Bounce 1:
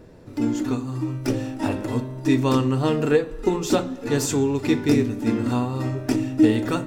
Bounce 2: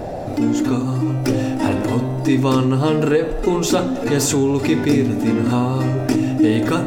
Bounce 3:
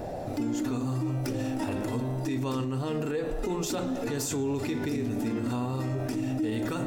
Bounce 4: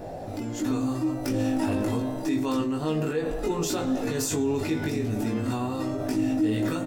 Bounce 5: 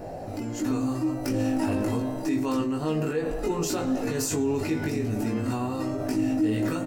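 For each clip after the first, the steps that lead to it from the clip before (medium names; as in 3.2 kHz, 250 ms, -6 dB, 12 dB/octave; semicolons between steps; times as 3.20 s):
band noise 480–780 Hz -46 dBFS; level flattener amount 50%
treble shelf 9 kHz +6.5 dB; peak limiter -14 dBFS, peak gain reduction 10 dB; trim -8.5 dB
level rider gain up to 5 dB; doubling 19 ms -2.5 dB; trim -3.5 dB
band-stop 3.5 kHz, Q 7.3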